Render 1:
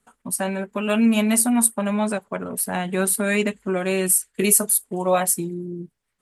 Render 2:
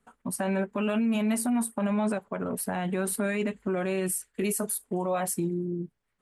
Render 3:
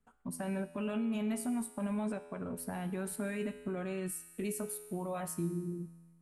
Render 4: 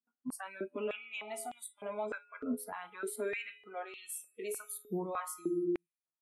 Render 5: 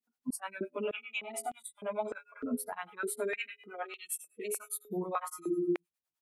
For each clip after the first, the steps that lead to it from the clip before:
high shelf 3600 Hz -10.5 dB; limiter -20 dBFS, peak gain reduction 10.5 dB
low shelf 140 Hz +11.5 dB; resonator 84 Hz, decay 1.5 s, harmonics all, mix 70%; gain -1.5 dB
phaser 1.4 Hz, delay 3.1 ms, feedback 25%; spectral noise reduction 26 dB; stepped high-pass 3.3 Hz 250–3300 Hz; gain -1.5 dB
harmonic tremolo 9.8 Hz, depth 100%, crossover 410 Hz; gain +7.5 dB

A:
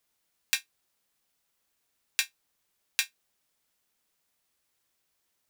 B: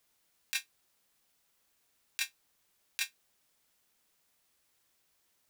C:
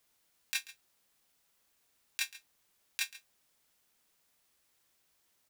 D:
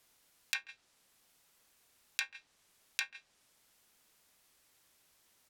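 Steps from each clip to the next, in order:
negative-ratio compressor -29 dBFS, ratio -0.5; gain -1.5 dB
echo 0.137 s -17.5 dB
treble ducked by the level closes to 1500 Hz, closed at -34.5 dBFS; gain +5 dB

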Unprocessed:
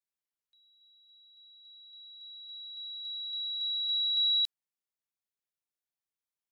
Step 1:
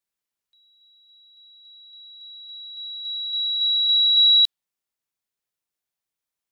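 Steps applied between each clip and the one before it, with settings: dynamic EQ 3600 Hz, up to +7 dB, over -42 dBFS; gain +6 dB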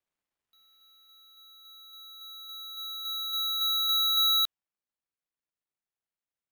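median filter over 9 samples; vocal rider within 4 dB 2 s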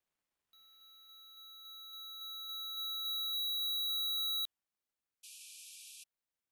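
soft clip -35 dBFS, distortion -7 dB; painted sound noise, 5.23–6.04, 2300–12000 Hz -53 dBFS

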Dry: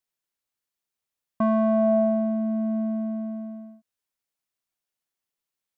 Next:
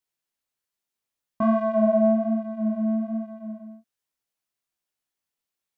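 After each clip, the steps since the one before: chorus 1.2 Hz, delay 15.5 ms, depth 7.3 ms; gain +3.5 dB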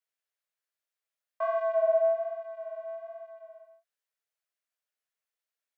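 rippled Chebyshev high-pass 430 Hz, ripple 6 dB; gain -1 dB

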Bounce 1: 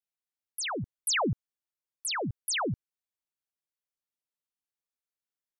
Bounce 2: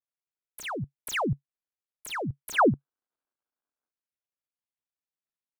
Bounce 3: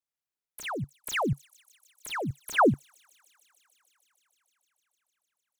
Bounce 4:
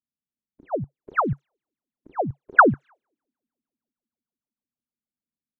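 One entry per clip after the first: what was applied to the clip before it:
median filter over 9 samples; dynamic EQ 140 Hz, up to +5 dB, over -49 dBFS, Q 4.8; spectral gain 2.54–3.91, 210–1700 Hz +11 dB
thin delay 0.152 s, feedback 85%, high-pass 5000 Hz, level -18.5 dB
envelope low-pass 230–1500 Hz up, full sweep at -25.5 dBFS; gain +2 dB

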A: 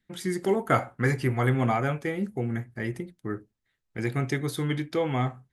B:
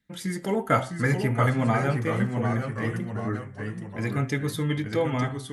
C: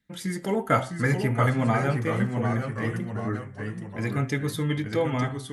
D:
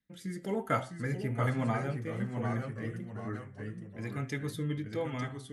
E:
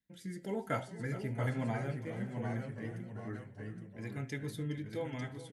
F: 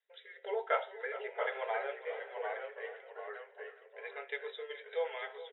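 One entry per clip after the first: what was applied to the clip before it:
notch comb 370 Hz; echoes that change speed 0.641 s, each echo -1 st, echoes 3, each echo -6 dB; de-hum 129.7 Hz, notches 27; gain +2 dB
nothing audible
rotary speaker horn 1.1 Hz; gain -7 dB
notch 1200 Hz, Q 5.1; feedback echo 0.416 s, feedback 35%, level -14.5 dB; gain -4 dB
brick-wall FIR band-pass 400–3900 Hz; gain +5 dB

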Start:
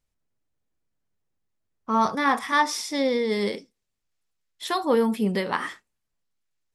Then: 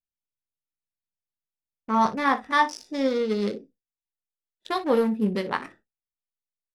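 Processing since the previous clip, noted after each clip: Wiener smoothing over 41 samples; on a send: early reflections 19 ms -11 dB, 59 ms -16.5 dB; on the sum: gate with hold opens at -49 dBFS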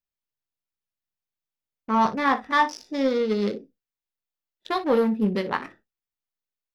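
in parallel at -6 dB: hard clip -19 dBFS, distortion -12 dB; on the sum: bell 9000 Hz -9 dB 0.67 oct; gain -2 dB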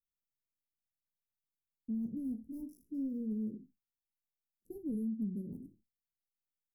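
inverse Chebyshev band-stop 1100–3300 Hz, stop band 80 dB; compressor 6:1, threshold -30 dBFS, peak gain reduction 10.5 dB; record warp 45 rpm, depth 100 cents; gain -4 dB

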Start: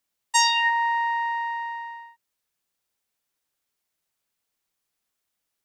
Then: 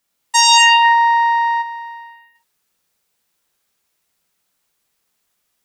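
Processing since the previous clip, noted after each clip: non-linear reverb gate 0.29 s flat, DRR -2.5 dB; spectral gain 1.62–2.35, 850–9600 Hz -8 dB; maximiser +7.5 dB; gain -1 dB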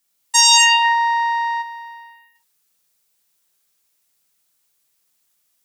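high shelf 3700 Hz +10 dB; gain -5.5 dB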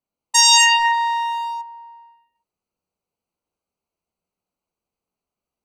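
Wiener smoothing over 25 samples

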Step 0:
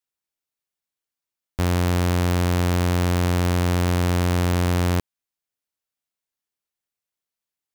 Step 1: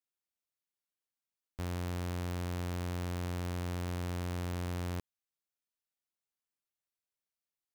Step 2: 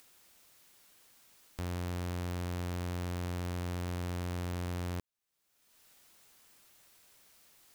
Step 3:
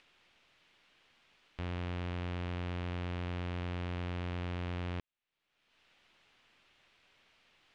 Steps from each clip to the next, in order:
limiter -24.5 dBFS, peak gain reduction 9 dB; gain -7.5 dB
upward compressor, threshold -39 dBFS
half-wave gain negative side -3 dB; synth low-pass 2900 Hz, resonance Q 1.7

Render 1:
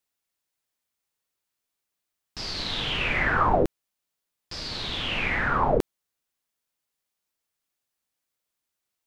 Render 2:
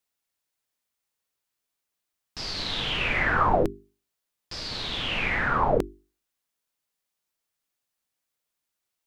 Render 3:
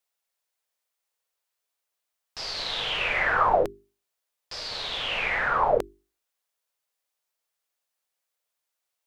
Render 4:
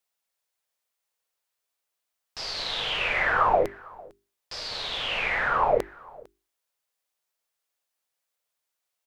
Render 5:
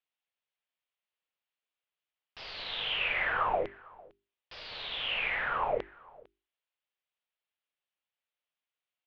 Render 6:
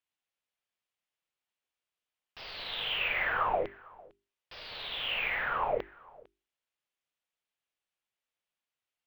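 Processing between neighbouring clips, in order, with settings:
notches 50/100/150/200/250/300/350/400 Hz
resonant low shelf 380 Hz -9 dB, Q 1.5
echo 0.452 s -23.5 dB
ladder low-pass 3600 Hz, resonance 45%
decimation joined by straight lines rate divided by 2×

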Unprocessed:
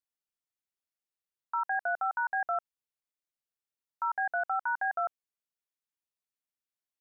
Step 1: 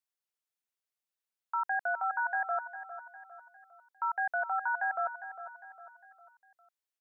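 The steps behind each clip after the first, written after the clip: HPF 470 Hz 6 dB/oct; feedback echo 0.404 s, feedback 44%, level -12 dB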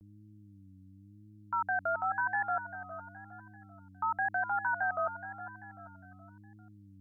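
buzz 100 Hz, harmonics 3, -55 dBFS -4 dB/oct; vibrato 0.95 Hz 93 cents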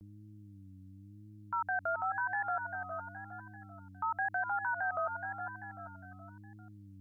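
dynamic EQ 210 Hz, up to -7 dB, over -57 dBFS, Q 1.1; limiter -30 dBFS, peak gain reduction 7.5 dB; gain +3.5 dB

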